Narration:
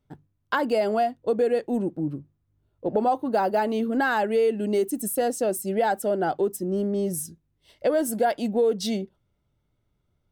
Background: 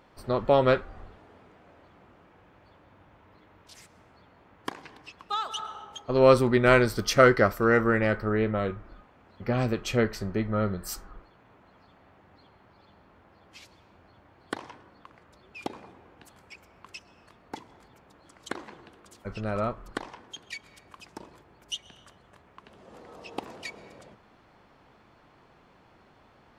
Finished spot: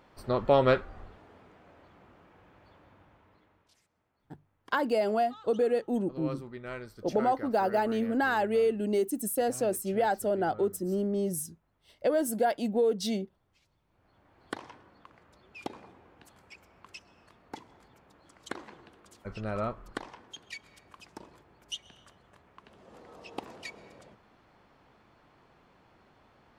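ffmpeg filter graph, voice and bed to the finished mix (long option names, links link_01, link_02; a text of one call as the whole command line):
ffmpeg -i stem1.wav -i stem2.wav -filter_complex "[0:a]adelay=4200,volume=-4dB[link_01];[1:a]volume=16dB,afade=type=out:start_time=2.84:duration=0.97:silence=0.105925,afade=type=in:start_time=13.86:duration=0.58:silence=0.133352[link_02];[link_01][link_02]amix=inputs=2:normalize=0" out.wav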